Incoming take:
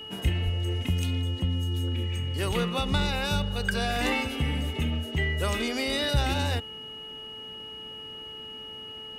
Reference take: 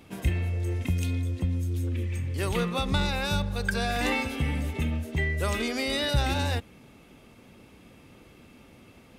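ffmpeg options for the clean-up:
ffmpeg -i in.wav -filter_complex "[0:a]bandreject=frequency=437:width_type=h:width=4,bandreject=frequency=874:width_type=h:width=4,bandreject=frequency=1311:width_type=h:width=4,bandreject=frequency=1748:width_type=h:width=4,bandreject=frequency=2900:width=30,asplit=3[link_01][link_02][link_03];[link_01]afade=type=out:start_time=0.44:duration=0.02[link_04];[link_02]highpass=frequency=140:width=0.5412,highpass=frequency=140:width=1.3066,afade=type=in:start_time=0.44:duration=0.02,afade=type=out:start_time=0.56:duration=0.02[link_05];[link_03]afade=type=in:start_time=0.56:duration=0.02[link_06];[link_04][link_05][link_06]amix=inputs=3:normalize=0" out.wav

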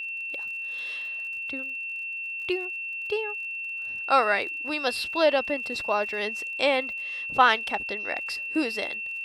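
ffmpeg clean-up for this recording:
ffmpeg -i in.wav -af "adeclick=threshold=4,bandreject=frequency=2700:width=30" out.wav

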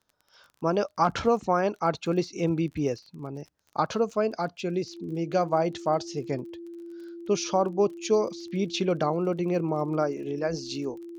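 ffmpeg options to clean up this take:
ffmpeg -i in.wav -af "adeclick=threshold=4,bandreject=frequency=340:width=30" out.wav

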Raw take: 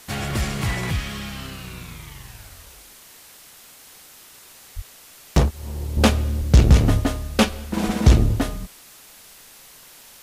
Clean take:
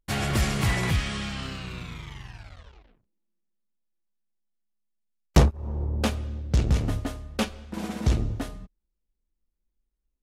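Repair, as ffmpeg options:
ffmpeg -i in.wav -filter_complex "[0:a]asplit=3[link_01][link_02][link_03];[link_01]afade=type=out:start_time=4.75:duration=0.02[link_04];[link_02]highpass=frequency=140:width=0.5412,highpass=frequency=140:width=1.3066,afade=type=in:start_time=4.75:duration=0.02,afade=type=out:start_time=4.87:duration=0.02[link_05];[link_03]afade=type=in:start_time=4.87:duration=0.02[link_06];[link_04][link_05][link_06]amix=inputs=3:normalize=0,asplit=3[link_07][link_08][link_09];[link_07]afade=type=out:start_time=6.38:duration=0.02[link_10];[link_08]highpass=frequency=140:width=0.5412,highpass=frequency=140:width=1.3066,afade=type=in:start_time=6.38:duration=0.02,afade=type=out:start_time=6.5:duration=0.02[link_11];[link_09]afade=type=in:start_time=6.5:duration=0.02[link_12];[link_10][link_11][link_12]amix=inputs=3:normalize=0,asplit=3[link_13][link_14][link_15];[link_13]afade=type=out:start_time=7.85:duration=0.02[link_16];[link_14]highpass=frequency=140:width=0.5412,highpass=frequency=140:width=1.3066,afade=type=in:start_time=7.85:duration=0.02,afade=type=out:start_time=7.97:duration=0.02[link_17];[link_15]afade=type=in:start_time=7.97:duration=0.02[link_18];[link_16][link_17][link_18]amix=inputs=3:normalize=0,afwtdn=0.0056,asetnsamples=nb_out_samples=441:pad=0,asendcmd='5.97 volume volume -9.5dB',volume=0dB" out.wav

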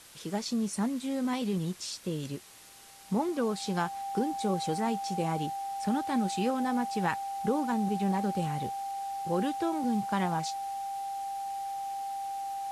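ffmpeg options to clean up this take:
ffmpeg -i in.wav -af "bandreject=frequency=790:width=30,afwtdn=0.0028" out.wav

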